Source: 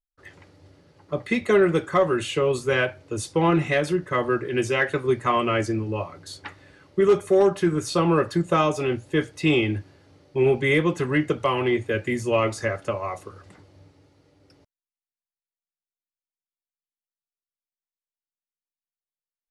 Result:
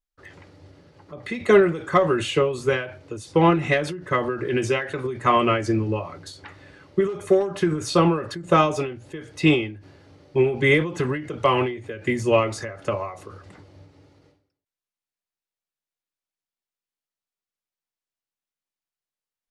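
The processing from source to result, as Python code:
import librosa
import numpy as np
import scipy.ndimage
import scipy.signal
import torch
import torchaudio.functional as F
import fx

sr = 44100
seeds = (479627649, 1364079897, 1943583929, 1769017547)

y = fx.high_shelf(x, sr, hz=9400.0, db=-9.0)
y = fx.end_taper(y, sr, db_per_s=100.0)
y = y * librosa.db_to_amplitude(4.0)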